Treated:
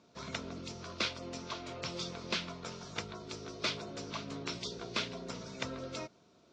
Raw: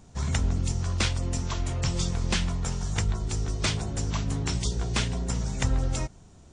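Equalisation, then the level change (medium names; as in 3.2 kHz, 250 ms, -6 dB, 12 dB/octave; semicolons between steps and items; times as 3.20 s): Butterworth band-stop 790 Hz, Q 6.5; cabinet simulation 260–4700 Hz, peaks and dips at 970 Hz -5 dB, 1.8 kHz -9 dB, 3 kHz -5 dB; bass shelf 460 Hz -5.5 dB; -1.0 dB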